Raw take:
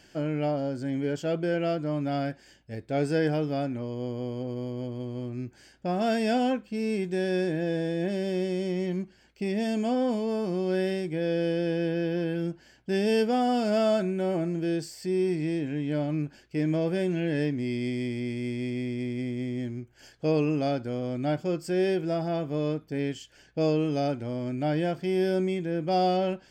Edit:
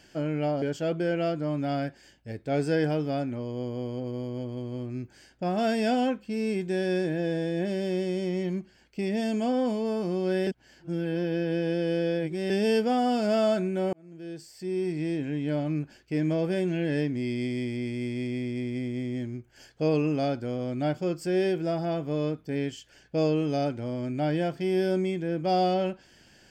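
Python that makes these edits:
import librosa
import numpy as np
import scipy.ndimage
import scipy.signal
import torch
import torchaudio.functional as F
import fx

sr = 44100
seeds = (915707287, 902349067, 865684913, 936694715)

y = fx.edit(x, sr, fx.cut(start_s=0.62, length_s=0.43),
    fx.reverse_span(start_s=10.9, length_s=2.03),
    fx.fade_in_span(start_s=14.36, length_s=1.25), tone=tone)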